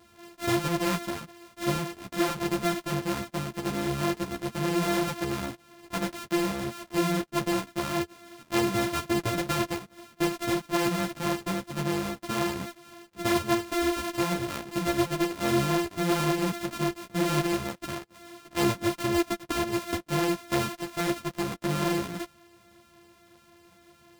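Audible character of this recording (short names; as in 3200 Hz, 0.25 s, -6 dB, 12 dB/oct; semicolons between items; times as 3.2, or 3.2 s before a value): a buzz of ramps at a fixed pitch in blocks of 128 samples; a shimmering, thickened sound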